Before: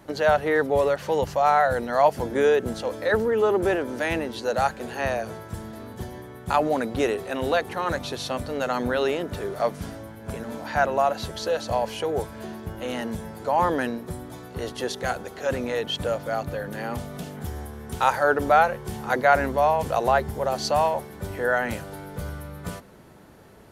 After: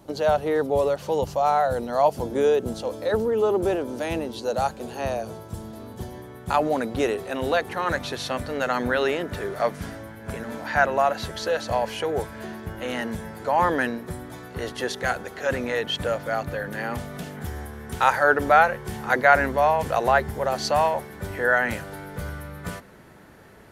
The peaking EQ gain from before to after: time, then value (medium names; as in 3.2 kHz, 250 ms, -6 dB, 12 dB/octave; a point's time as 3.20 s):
peaking EQ 1.8 kHz 0.88 oct
5.48 s -9.5 dB
6.36 s -0.5 dB
7.43 s -0.5 dB
8.00 s +6 dB